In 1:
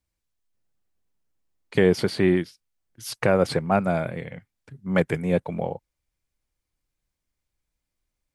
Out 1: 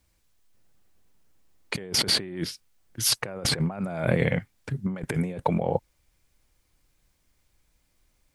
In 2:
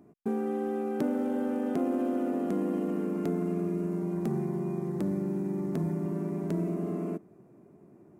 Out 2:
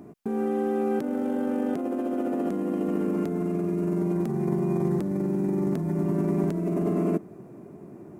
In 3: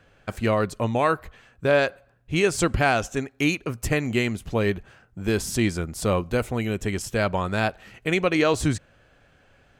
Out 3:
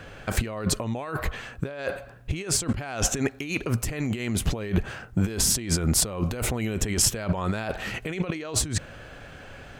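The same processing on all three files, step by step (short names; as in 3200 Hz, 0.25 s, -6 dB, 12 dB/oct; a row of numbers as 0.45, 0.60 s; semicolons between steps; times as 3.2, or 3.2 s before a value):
negative-ratio compressor -34 dBFS, ratio -1; match loudness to -27 LUFS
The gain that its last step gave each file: +5.0, +8.0, +5.5 dB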